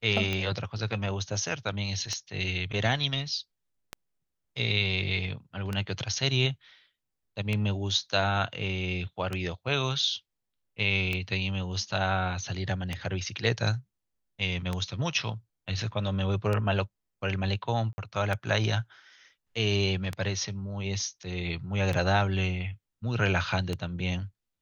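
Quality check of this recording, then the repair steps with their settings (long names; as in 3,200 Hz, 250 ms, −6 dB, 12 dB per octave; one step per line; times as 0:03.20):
scratch tick 33 1/3 rpm −16 dBFS
0:17.93–0:17.98: drop-out 50 ms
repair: click removal
repair the gap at 0:17.93, 50 ms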